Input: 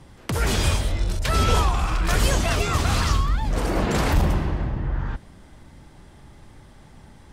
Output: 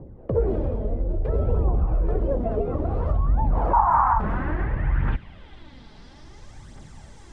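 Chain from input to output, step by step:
0:03.73–0:04.20: drawn EQ curve 100 Hz 0 dB, 460 Hz −24 dB, 890 Hz +15 dB, 4,300 Hz −25 dB, 6,900 Hz +6 dB, 13,000 Hz +11 dB
downward compressor, threshold −21 dBFS, peak gain reduction 8 dB
phase shifter 0.59 Hz, delay 4.8 ms, feedback 48%
low-pass filter sweep 500 Hz → 7,200 Hz, 0:02.78–0:06.64

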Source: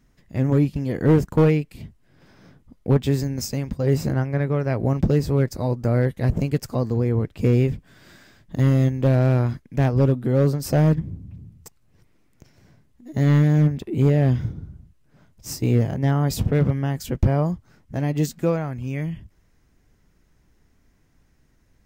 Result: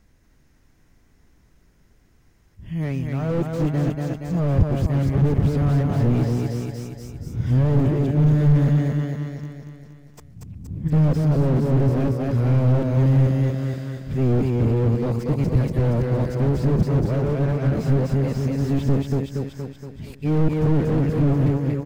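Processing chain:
played backwards from end to start
repeating echo 235 ms, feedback 54%, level −5.5 dB
slew-rate limiting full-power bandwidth 28 Hz
level +2 dB

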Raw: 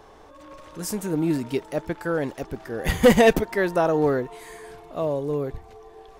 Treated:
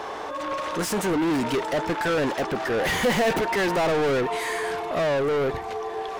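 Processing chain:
mid-hump overdrive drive 36 dB, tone 3,400 Hz, clips at −7 dBFS
level −9 dB

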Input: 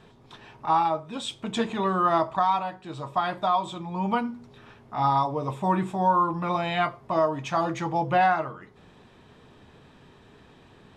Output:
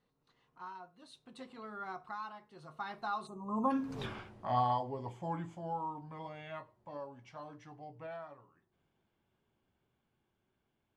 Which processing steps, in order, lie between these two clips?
source passing by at 0:04.02, 40 m/s, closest 2.3 metres
gain on a spectral selection 0:03.27–0:03.71, 1,300–6,000 Hz −25 dB
level +11.5 dB

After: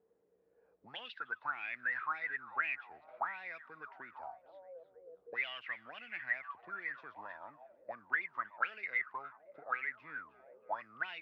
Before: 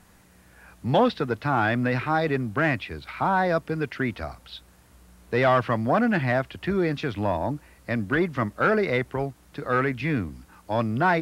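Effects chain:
echo through a band-pass that steps 313 ms, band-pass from 3,200 Hz, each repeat −0.7 octaves, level −10.5 dB
envelope filter 440–2,900 Hz, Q 14, up, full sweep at −17 dBFS
level +1 dB

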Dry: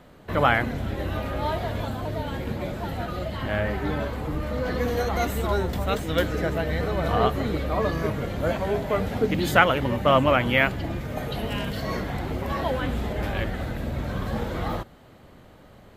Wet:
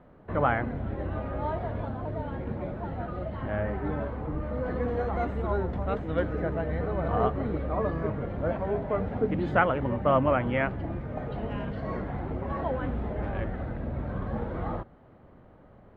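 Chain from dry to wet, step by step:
low-pass filter 1,400 Hz 12 dB per octave
level −3.5 dB

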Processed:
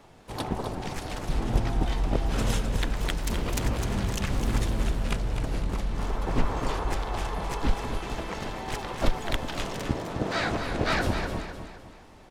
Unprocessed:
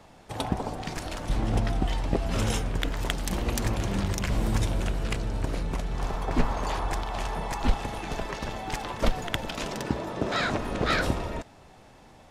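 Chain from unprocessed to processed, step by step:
pitch-shifted copies added −12 semitones −3 dB, +3 semitones −4 dB
repeating echo 256 ms, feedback 40%, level −8 dB
level −3.5 dB

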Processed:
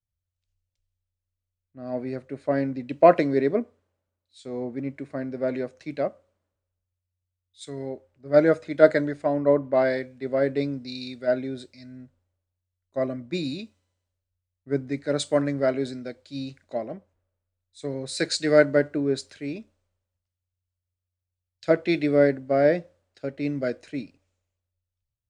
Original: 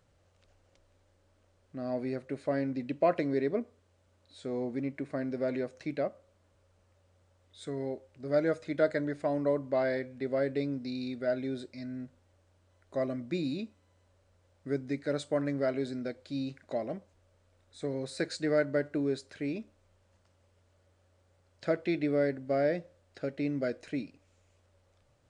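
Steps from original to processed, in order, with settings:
multiband upward and downward expander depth 100%
level +5 dB

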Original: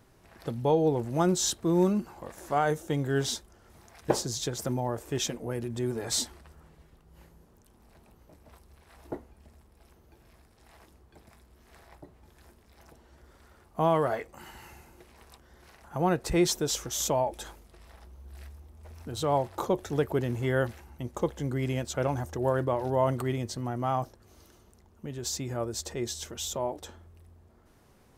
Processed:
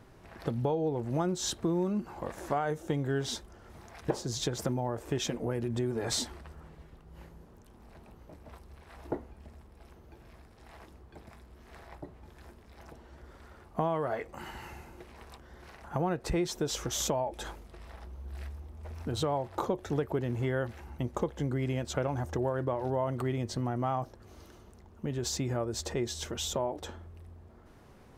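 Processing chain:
high-shelf EQ 5,100 Hz −10 dB
downward compressor 5 to 1, threshold −33 dBFS, peak gain reduction 13.5 dB
level +5 dB

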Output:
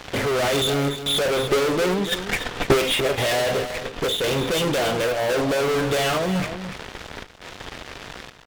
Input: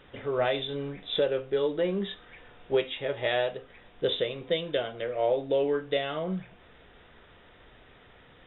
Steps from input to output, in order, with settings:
gate pattern "xxxxx.xxxxx." 85 BPM −12 dB
fuzz pedal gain 49 dB, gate −52 dBFS
0:01.24–0:03.13: transient designer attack +12 dB, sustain −3 dB
on a send: single-tap delay 291 ms −10.5 dB
on the sum: level −7.5 dB

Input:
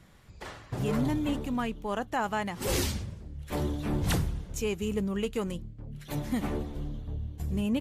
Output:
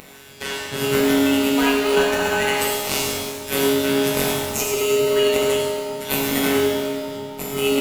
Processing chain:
high-pass filter 89 Hz
on a send: echo with a time of its own for lows and highs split 560 Hz, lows 212 ms, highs 98 ms, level −13 dB
on the sum: phases set to zero 138 Hz
RIAA equalisation recording
hollow resonant body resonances 210/380/1,500 Hz, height 10 dB, ringing for 50 ms
in parallel at −3.5 dB: sample-rate reduction 1,700 Hz, jitter 0%
on the sum: parametric band 2,500 Hz +7 dB 1.2 octaves
compressor whose output falls as the input rises −28 dBFS, ratio −0.5
reverb with rising layers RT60 1.3 s, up +7 semitones, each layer −8 dB, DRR −3 dB
level +4.5 dB

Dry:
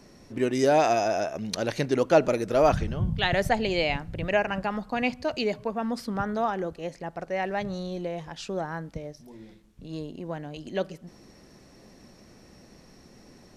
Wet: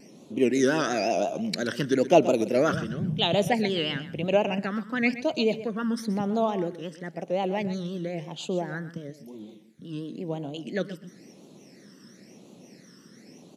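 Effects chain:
high-pass filter 160 Hz 24 dB per octave
pitch vibrato 5.7 Hz 92 cents
all-pass phaser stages 12, 0.98 Hz, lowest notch 720–1,800 Hz
on a send: repeating echo 126 ms, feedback 17%, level −14 dB
on the sum: level +4 dB

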